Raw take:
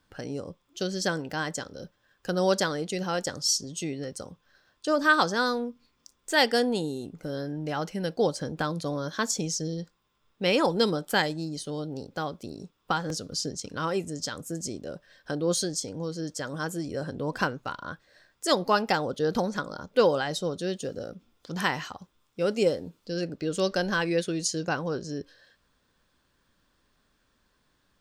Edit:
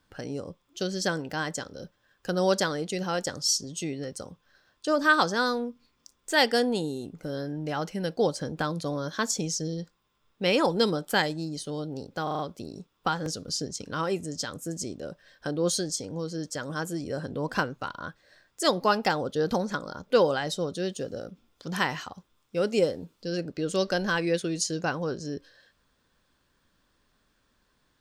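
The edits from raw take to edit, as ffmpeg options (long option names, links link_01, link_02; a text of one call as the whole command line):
ffmpeg -i in.wav -filter_complex "[0:a]asplit=5[link_01][link_02][link_03][link_04][link_05];[link_01]atrim=end=12.272[link_06];[link_02]atrim=start=12.228:end=12.272[link_07];[link_03]atrim=start=12.228:end=12.272[link_08];[link_04]atrim=start=12.228:end=12.272[link_09];[link_05]atrim=start=12.228[link_10];[link_06][link_07]acrossfade=duration=0.004:curve1=hsin:curve2=hsin[link_11];[link_11][link_08]acrossfade=duration=0.004:curve1=hsin:curve2=hsin[link_12];[link_12][link_09]acrossfade=duration=0.004:curve1=hsin:curve2=hsin[link_13];[link_13][link_10]acrossfade=duration=0.004:curve1=hsin:curve2=hsin" out.wav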